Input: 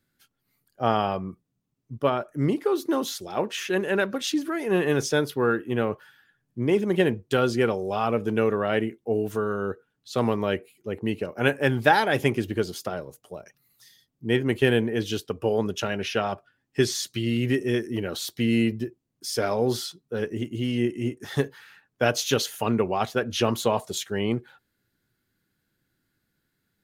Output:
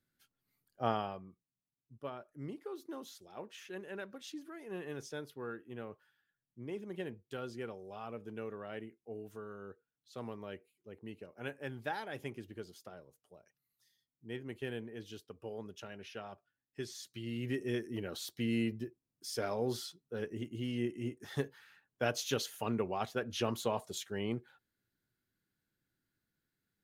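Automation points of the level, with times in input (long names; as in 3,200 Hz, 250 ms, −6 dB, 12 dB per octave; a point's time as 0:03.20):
0:00.88 −9.5 dB
0:01.28 −20 dB
0:16.84 −20 dB
0:17.68 −11 dB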